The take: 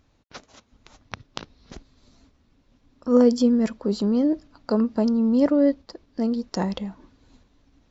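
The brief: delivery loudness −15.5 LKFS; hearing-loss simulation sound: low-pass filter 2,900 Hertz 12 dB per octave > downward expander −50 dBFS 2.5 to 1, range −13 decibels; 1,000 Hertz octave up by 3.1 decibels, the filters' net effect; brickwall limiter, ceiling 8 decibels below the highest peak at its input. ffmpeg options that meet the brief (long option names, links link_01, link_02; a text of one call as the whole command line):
ffmpeg -i in.wav -af "equalizer=frequency=1000:width_type=o:gain=4,alimiter=limit=-15dB:level=0:latency=1,lowpass=2900,agate=range=-13dB:threshold=-50dB:ratio=2.5,volume=9dB" out.wav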